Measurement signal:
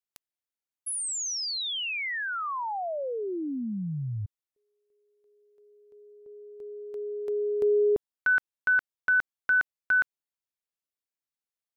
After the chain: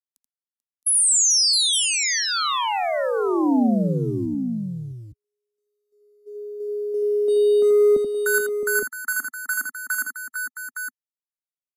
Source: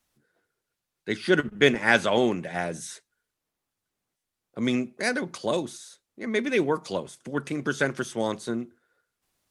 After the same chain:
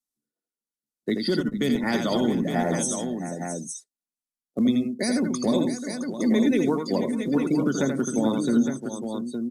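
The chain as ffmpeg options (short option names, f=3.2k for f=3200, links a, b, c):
-filter_complex "[0:a]agate=range=-7dB:threshold=-50dB:ratio=16:release=39:detection=peak,acrusher=bits=4:mode=log:mix=0:aa=0.000001,equalizer=f=100:t=o:w=0.67:g=-11,equalizer=f=250:t=o:w=0.67:g=10,equalizer=f=2.5k:t=o:w=0.67:g=-6,afftdn=nr=25:nf=-36,aresample=32000,aresample=44100,bass=f=250:g=1,treble=f=4k:g=13,bandreject=f=1.6k:w=5.4,acrossover=split=150[a][b];[b]acompressor=threshold=-25dB:ratio=3:attack=0.29:release=767:knee=2.83:detection=peak[c];[a][c]amix=inputs=2:normalize=0,alimiter=limit=-23dB:level=0:latency=1:release=118,asplit=2[d][e];[e]aecho=0:1:82|439|666|863:0.531|0.141|0.299|0.447[f];[d][f]amix=inputs=2:normalize=0,volume=7.5dB"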